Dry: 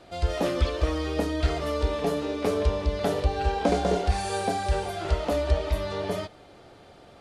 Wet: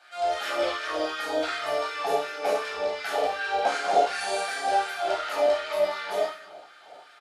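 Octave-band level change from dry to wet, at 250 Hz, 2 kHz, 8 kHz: −10.5, +6.5, +1.0 decibels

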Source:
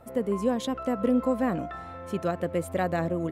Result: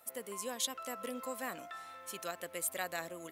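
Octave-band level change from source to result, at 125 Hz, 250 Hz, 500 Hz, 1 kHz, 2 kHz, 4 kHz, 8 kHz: −25.0, −21.5, −15.0, −10.0, −4.5, +1.5, +8.0 decibels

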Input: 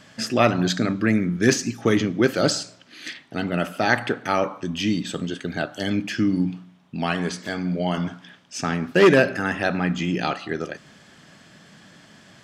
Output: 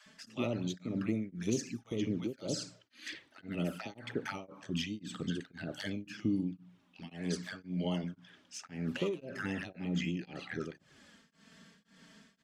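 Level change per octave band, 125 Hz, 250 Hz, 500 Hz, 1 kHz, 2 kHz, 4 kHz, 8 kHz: −12.0, −13.0, −18.0, −22.5, −19.0, −14.0, −14.0 decibels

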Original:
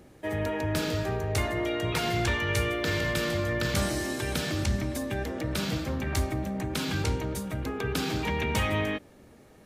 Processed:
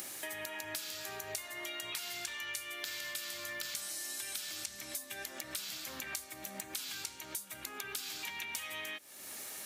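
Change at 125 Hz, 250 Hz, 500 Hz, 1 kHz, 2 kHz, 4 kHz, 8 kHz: −32.0, −24.0, −19.0, −14.5, −9.5, −6.0, −1.0 decibels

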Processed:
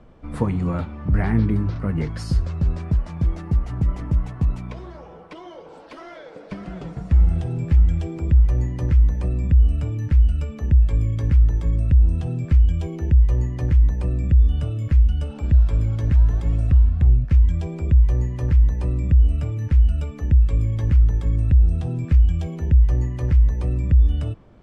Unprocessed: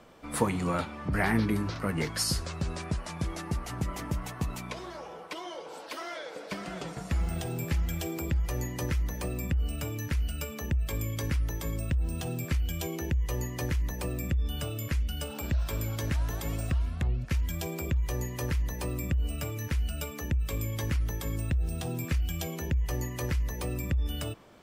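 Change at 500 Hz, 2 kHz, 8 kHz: +1.5 dB, −4.0 dB, below −10 dB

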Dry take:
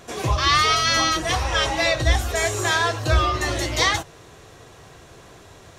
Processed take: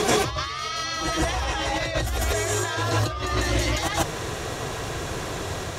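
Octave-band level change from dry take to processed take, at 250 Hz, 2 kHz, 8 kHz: +1.0, −5.5, −2.0 decibels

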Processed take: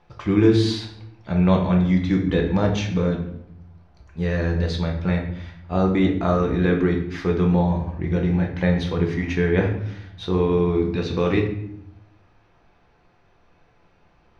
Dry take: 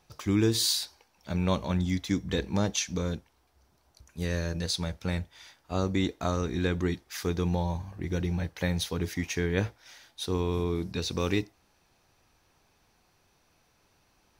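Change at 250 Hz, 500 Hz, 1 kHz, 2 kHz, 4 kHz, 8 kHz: +10.0 dB, +10.0 dB, +8.0 dB, +6.5 dB, −1.5 dB, below −10 dB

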